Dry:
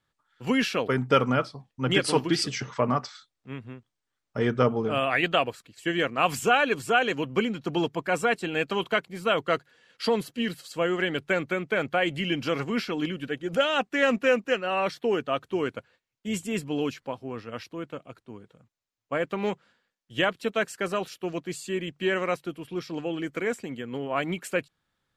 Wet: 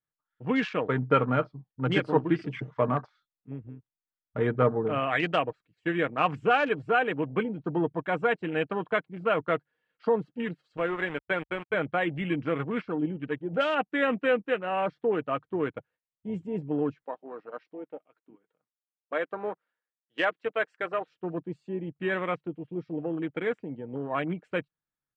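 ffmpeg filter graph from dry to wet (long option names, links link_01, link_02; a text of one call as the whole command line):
ffmpeg -i in.wav -filter_complex "[0:a]asettb=1/sr,asplit=3[link_01][link_02][link_03];[link_01]atrim=end=10.774[link_04];[link_02]atrim=start=10.77:end=11.74,asetpts=PTS-STARTPTS,afade=type=in:duration=0.004:curve=qsin,afade=type=out:start_time=0.966:duration=0.004:curve=qsin,highpass=frequency=270:poles=1,aeval=exprs='val(0)*gte(abs(val(0)),0.0266)':channel_layout=same[link_05];[link_03]atrim=start=11.736[link_06];[link_04][link_05]acrossfade=duration=0.004:curve1=hsin:curve2=qsin[link_07];[link_07][link_06]acrossfade=duration=0.004:curve1=qsin:curve2=hsin,asettb=1/sr,asplit=3[link_08][link_09][link_10];[link_08]atrim=end=17.044[link_11];[link_09]atrim=start=17.04:end=21.08,asetpts=PTS-STARTPTS,afade=type=in:duration=0.004:curve=qsin,afade=type=out:start_time=4.036:duration=0.004:curve=qsin,highpass=390,equalizer=frequency=1900:width=3.7:gain=2.5[link_12];[link_10]atrim=start=21.076[link_13];[link_11][link_12]acrossfade=duration=0.004:curve1=hsin:curve2=qsin[link_14];[link_14][link_13]acrossfade=duration=0.004:curve1=qsin:curve2=hsin,lowpass=2400,afwtdn=0.0141,aecho=1:1:6.5:0.3,volume=-1.5dB" out.wav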